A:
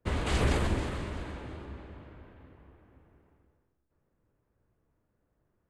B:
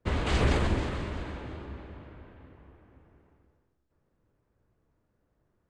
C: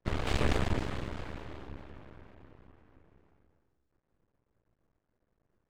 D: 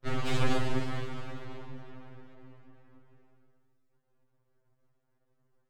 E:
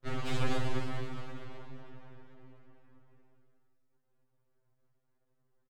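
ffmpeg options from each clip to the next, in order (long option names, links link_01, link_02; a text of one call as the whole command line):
ffmpeg -i in.wav -af "lowpass=6700,volume=2dB" out.wav
ffmpeg -i in.wav -af "aeval=exprs='max(val(0),0)':channel_layout=same" out.wav
ffmpeg -i in.wav -af "afftfilt=real='re*2.45*eq(mod(b,6),0)':imag='im*2.45*eq(mod(b,6),0)':win_size=2048:overlap=0.75,volume=3.5dB" out.wav
ffmpeg -i in.wav -af "aecho=1:1:241:0.299,volume=-4dB" out.wav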